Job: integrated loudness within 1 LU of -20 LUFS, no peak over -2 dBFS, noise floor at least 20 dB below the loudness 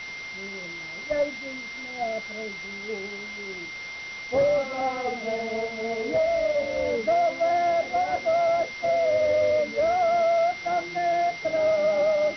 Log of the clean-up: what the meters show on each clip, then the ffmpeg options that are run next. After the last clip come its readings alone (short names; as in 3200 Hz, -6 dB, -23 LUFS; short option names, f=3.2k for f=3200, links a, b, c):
steady tone 2100 Hz; tone level -35 dBFS; noise floor -37 dBFS; noise floor target -46 dBFS; loudness -25.5 LUFS; peak -14.0 dBFS; loudness target -20.0 LUFS
-> -af "bandreject=f=2.1k:w=30"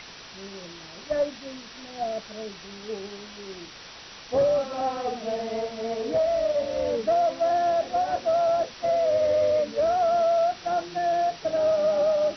steady tone none; noise floor -44 dBFS; noise floor target -45 dBFS
-> -af "afftdn=nr=6:nf=-44"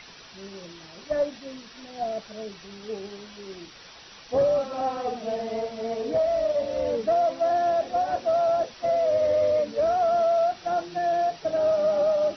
noise floor -47 dBFS; loudness -25.0 LUFS; peak -14.5 dBFS; loudness target -20.0 LUFS
-> -af "volume=5dB"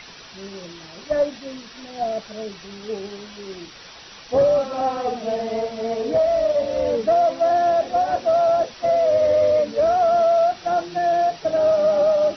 loudness -20.0 LUFS; peak -9.5 dBFS; noise floor -42 dBFS